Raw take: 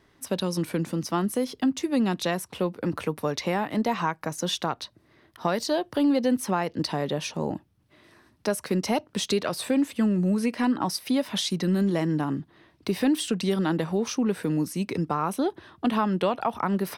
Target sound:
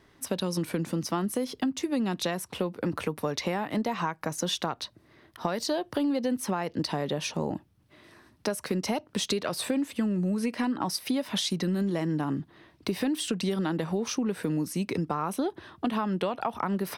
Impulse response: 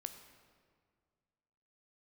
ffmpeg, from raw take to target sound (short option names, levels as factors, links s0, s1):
-af "acompressor=threshold=0.0447:ratio=4,volume=1.19"